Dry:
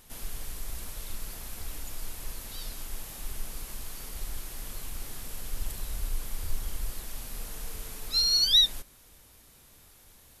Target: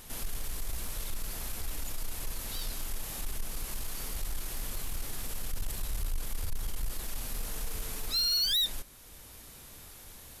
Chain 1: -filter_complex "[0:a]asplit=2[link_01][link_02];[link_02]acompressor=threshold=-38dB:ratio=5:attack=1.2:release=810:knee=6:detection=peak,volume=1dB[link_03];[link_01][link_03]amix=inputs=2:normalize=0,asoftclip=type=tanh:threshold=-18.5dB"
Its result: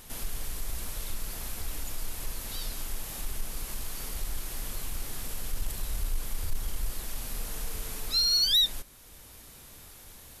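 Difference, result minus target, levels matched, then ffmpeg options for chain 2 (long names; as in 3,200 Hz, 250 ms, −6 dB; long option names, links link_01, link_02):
soft clipping: distortion −7 dB
-filter_complex "[0:a]asplit=2[link_01][link_02];[link_02]acompressor=threshold=-38dB:ratio=5:attack=1.2:release=810:knee=6:detection=peak,volume=1dB[link_03];[link_01][link_03]amix=inputs=2:normalize=0,asoftclip=type=tanh:threshold=-25.5dB"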